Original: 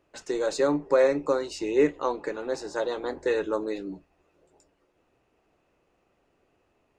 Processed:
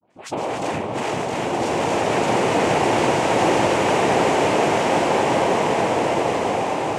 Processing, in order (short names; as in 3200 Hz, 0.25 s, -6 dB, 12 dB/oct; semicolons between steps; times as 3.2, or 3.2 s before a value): Chebyshev low-pass 4600 Hz; dispersion highs, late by 0.105 s, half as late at 730 Hz; in parallel at -3 dB: sine folder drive 9 dB, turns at -14.5 dBFS; on the sum: echoes that change speed 0.702 s, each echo +1 st, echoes 3; on a send: repeats that get brighter 0.191 s, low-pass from 400 Hz, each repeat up 1 oct, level 0 dB; on the sum: soft clip -18.5 dBFS, distortion -8 dB; noise vocoder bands 4; bloom reverb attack 1.88 s, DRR -5 dB; gain -3 dB